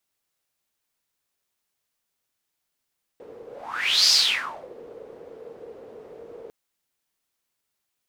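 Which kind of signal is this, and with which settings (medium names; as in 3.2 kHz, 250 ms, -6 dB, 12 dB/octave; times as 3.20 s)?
whoosh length 3.30 s, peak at 0.91 s, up 0.67 s, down 0.62 s, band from 460 Hz, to 5 kHz, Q 7.8, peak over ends 25.5 dB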